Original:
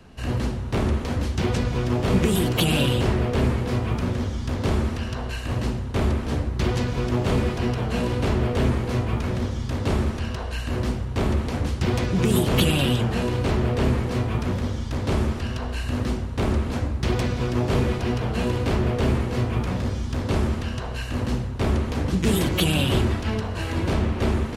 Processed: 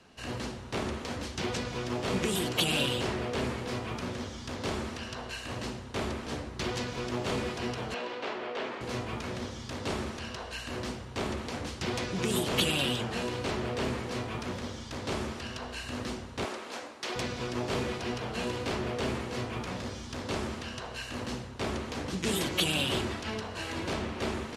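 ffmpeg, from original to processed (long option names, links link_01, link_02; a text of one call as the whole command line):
ffmpeg -i in.wav -filter_complex "[0:a]asettb=1/sr,asplit=3[link_01][link_02][link_03];[link_01]atrim=end=7.944[link_04];[link_02]atrim=start=7.94:end=8.81,asetpts=PTS-STARTPTS,afade=type=in:duration=0.004:curve=qsin,afade=type=out:start_time=0.866:duration=0.004:curve=qsin,highpass=420,lowpass=3500[link_05];[link_03]atrim=start=8.806[link_06];[link_04][link_05]acrossfade=duration=0.004:curve1=hsin:curve2=qsin[link_07];[link_07][link_06]acrossfade=duration=0.004:curve1=qsin:curve2=hsin,asettb=1/sr,asplit=3[link_08][link_09][link_10];[link_08]atrim=end=16.454[link_11];[link_09]atrim=start=16.45:end=17.16,asetpts=PTS-STARTPTS,afade=type=in:duration=0.004:curve=qsin,afade=type=out:start_time=0.706:duration=0.004:curve=qsin,highpass=430[link_12];[link_10]atrim=start=17.156[link_13];[link_11][link_12]acrossfade=duration=0.004:curve1=hsin:curve2=qsin[link_14];[link_14][link_13]acrossfade=duration=0.004:curve1=qsin:curve2=hsin,lowpass=6000,aemphasis=mode=production:type=bsi,volume=-5.5dB" out.wav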